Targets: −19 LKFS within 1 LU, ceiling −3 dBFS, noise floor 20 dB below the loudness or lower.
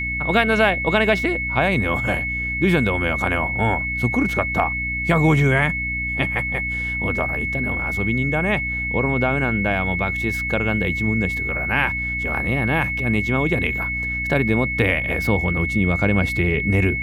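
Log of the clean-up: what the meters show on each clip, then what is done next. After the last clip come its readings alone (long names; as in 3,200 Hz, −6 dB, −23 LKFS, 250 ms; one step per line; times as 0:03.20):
mains hum 60 Hz; hum harmonics up to 300 Hz; level of the hum −28 dBFS; interfering tone 2,200 Hz; level of the tone −23 dBFS; integrated loudness −20.0 LKFS; sample peak −3.5 dBFS; target loudness −19.0 LKFS
→ hum removal 60 Hz, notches 5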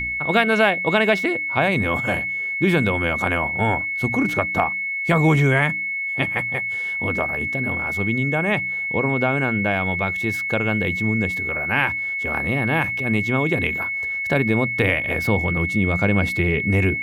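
mains hum none found; interfering tone 2,200 Hz; level of the tone −23 dBFS
→ notch filter 2,200 Hz, Q 30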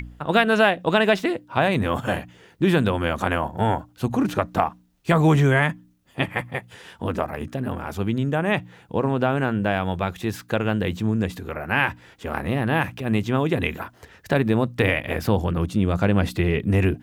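interfering tone none found; integrated loudness −23.0 LKFS; sample peak −4.5 dBFS; target loudness −19.0 LKFS
→ level +4 dB
brickwall limiter −3 dBFS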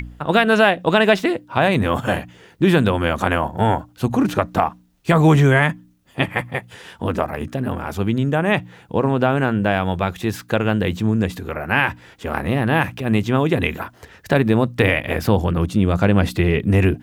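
integrated loudness −19.0 LKFS; sample peak −3.0 dBFS; background noise floor −51 dBFS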